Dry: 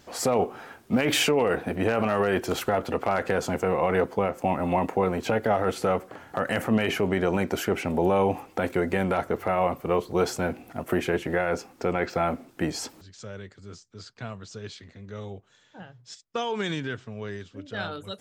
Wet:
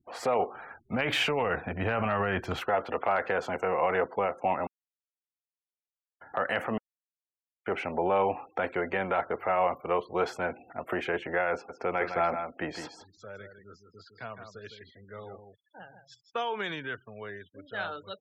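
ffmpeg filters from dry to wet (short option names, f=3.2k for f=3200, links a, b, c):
-filter_complex "[0:a]asplit=3[a][b][c];[a]afade=t=out:st=0.55:d=0.02[d];[b]asubboost=boost=8.5:cutoff=170,afade=t=in:st=0.55:d=0.02,afade=t=out:st=2.59:d=0.02[e];[c]afade=t=in:st=2.59:d=0.02[f];[d][e][f]amix=inputs=3:normalize=0,asplit=3[g][h][i];[g]afade=t=out:st=11.68:d=0.02[j];[h]aecho=1:1:160:0.422,afade=t=in:st=11.68:d=0.02,afade=t=out:st=16.39:d=0.02[k];[i]afade=t=in:st=16.39:d=0.02[l];[j][k][l]amix=inputs=3:normalize=0,asplit=5[m][n][o][p][q];[m]atrim=end=4.67,asetpts=PTS-STARTPTS,afade=t=out:st=4.666:d=0.004:c=hsin[r];[n]atrim=start=4.67:end=6.21,asetpts=PTS-STARTPTS,volume=0[s];[o]atrim=start=6.21:end=6.78,asetpts=PTS-STARTPTS,afade=t=in:d=0.004:c=hsin,afade=t=out:st=0.566:d=0.004:c=hsin[t];[p]atrim=start=6.78:end=7.66,asetpts=PTS-STARTPTS,volume=0[u];[q]atrim=start=7.66,asetpts=PTS-STARTPTS,afade=t=in:d=0.004:c=hsin[v];[r][s][t][u][v]concat=n=5:v=0:a=1,afftfilt=real='re*gte(hypot(re,im),0.00562)':imag='im*gte(hypot(re,im),0.00562)':win_size=1024:overlap=0.75,acrossover=split=480 3500:gain=0.251 1 0.141[w][x][y];[w][x][y]amix=inputs=3:normalize=0"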